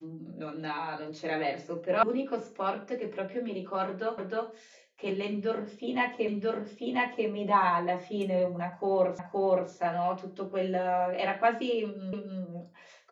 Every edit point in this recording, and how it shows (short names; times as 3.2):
2.03 sound cut off
4.18 repeat of the last 0.31 s
6.28 repeat of the last 0.99 s
9.19 repeat of the last 0.52 s
12.13 repeat of the last 0.29 s